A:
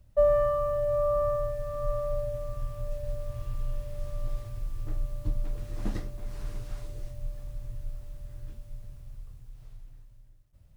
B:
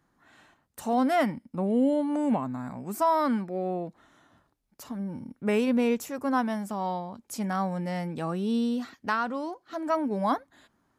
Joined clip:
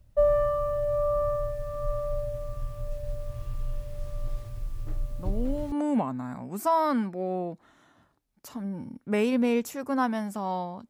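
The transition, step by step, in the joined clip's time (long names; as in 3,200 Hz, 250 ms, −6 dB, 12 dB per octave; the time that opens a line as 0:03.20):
A
0:05.08: mix in B from 0:01.43 0.64 s −8 dB
0:05.72: continue with B from 0:02.07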